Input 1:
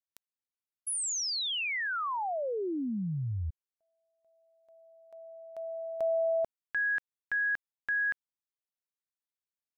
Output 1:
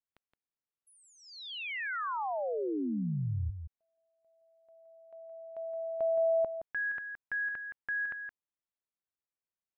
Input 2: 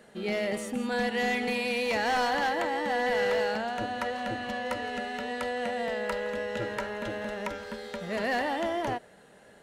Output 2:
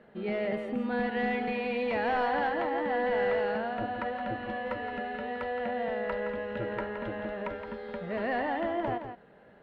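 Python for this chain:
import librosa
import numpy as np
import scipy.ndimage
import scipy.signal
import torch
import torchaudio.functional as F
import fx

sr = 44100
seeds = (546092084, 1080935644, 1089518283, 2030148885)

p1 = fx.air_absorb(x, sr, metres=460.0)
y = p1 + fx.echo_single(p1, sr, ms=169, db=-8.5, dry=0)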